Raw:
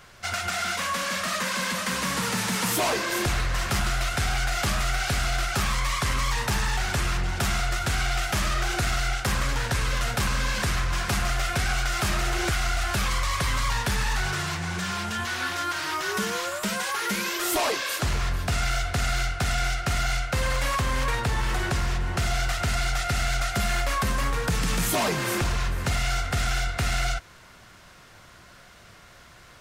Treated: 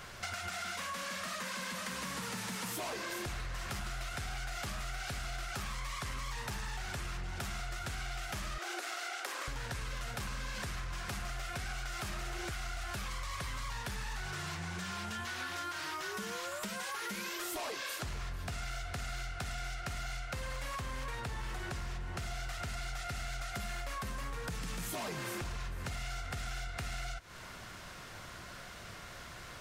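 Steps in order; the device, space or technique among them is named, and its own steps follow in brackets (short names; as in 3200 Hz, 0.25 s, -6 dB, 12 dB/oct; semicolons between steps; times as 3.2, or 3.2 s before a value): 8.58–9.48 elliptic high-pass 320 Hz, stop band 60 dB; serial compression, peaks first (compressor 4:1, threshold -36 dBFS, peak gain reduction 12 dB; compressor 2.5:1, threshold -41 dBFS, peak gain reduction 6 dB); gain +2 dB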